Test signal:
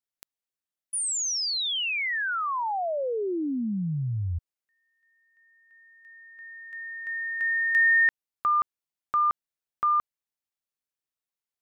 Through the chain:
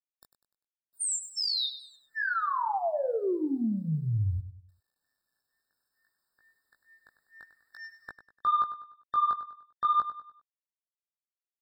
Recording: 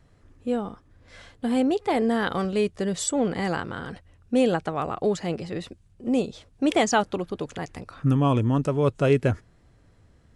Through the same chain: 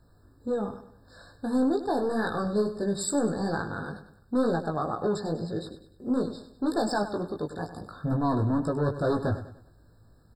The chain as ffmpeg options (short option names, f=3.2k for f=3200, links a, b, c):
-filter_complex "[0:a]asplit=2[a][b];[b]aeval=exprs='0.376*sin(PI/2*3.16*val(0)/0.376)':c=same,volume=-8dB[c];[a][c]amix=inputs=2:normalize=0,flanger=delay=17.5:depth=2.3:speed=2.2,acrusher=bits=10:mix=0:aa=0.000001,aecho=1:1:99|198|297|396:0.251|0.1|0.0402|0.0161,afftfilt=real='re*eq(mod(floor(b*sr/1024/1800),2),0)':imag='im*eq(mod(floor(b*sr/1024/1800),2),0)':win_size=1024:overlap=0.75,volume=-7.5dB"